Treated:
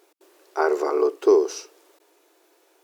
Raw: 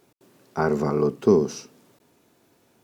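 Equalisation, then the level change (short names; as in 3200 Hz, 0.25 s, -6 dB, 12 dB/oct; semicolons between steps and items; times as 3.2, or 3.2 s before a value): brick-wall FIR high-pass 300 Hz; +2.5 dB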